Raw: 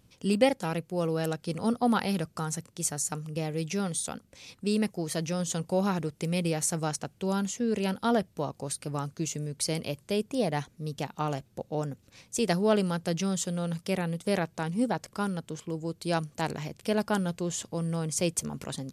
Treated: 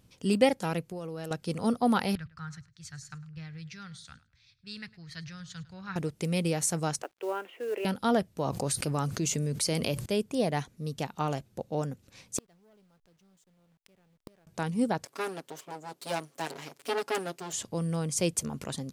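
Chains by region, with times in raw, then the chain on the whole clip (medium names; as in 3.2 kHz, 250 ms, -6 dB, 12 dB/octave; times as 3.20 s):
0.89–1.31 s: compression 12:1, threshold -34 dBFS + tape noise reduction on one side only encoder only
2.15–5.96 s: FFT filter 130 Hz 0 dB, 200 Hz -17 dB, 340 Hz -25 dB, 580 Hz -27 dB, 890 Hz -19 dB, 1.6 kHz -1 dB, 2.9 kHz -10 dB, 4.3 kHz -4 dB, 6.3 kHz -16 dB, 10 kHz -27 dB + feedback delay 105 ms, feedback 25%, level -17.5 dB + three bands expanded up and down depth 70%
7.02–7.85 s: Chebyshev band-pass 330–2800 Hz, order 4 + companded quantiser 6-bit
8.45–10.06 s: hum notches 60/120/180 Hz + level flattener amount 70%
12.38–14.47 s: send-on-delta sampling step -33.5 dBFS + waveshaping leveller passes 2 + inverted gate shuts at -21 dBFS, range -42 dB
15.05–17.53 s: comb filter that takes the minimum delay 7.2 ms + high-pass 320 Hz
whole clip: none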